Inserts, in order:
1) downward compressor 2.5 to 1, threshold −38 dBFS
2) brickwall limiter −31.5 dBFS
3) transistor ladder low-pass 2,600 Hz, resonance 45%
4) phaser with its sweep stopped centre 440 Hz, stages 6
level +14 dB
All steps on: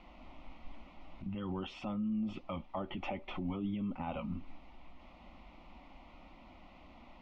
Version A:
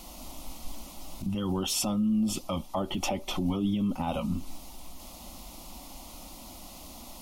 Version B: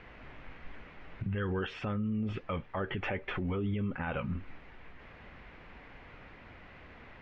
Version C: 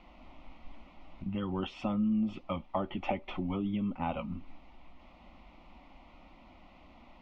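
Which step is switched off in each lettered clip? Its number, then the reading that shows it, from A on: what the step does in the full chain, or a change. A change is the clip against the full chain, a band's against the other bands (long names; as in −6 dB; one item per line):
3, 4 kHz band +7.0 dB
4, 2 kHz band +8.0 dB
2, change in crest factor +3.5 dB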